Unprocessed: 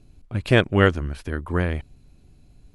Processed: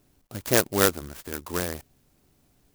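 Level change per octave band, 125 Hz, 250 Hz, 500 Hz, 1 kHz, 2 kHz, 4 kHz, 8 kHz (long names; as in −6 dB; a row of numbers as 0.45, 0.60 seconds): −12.5 dB, −6.5 dB, −4.0 dB, −3.0 dB, −6.0 dB, −0.5 dB, can't be measured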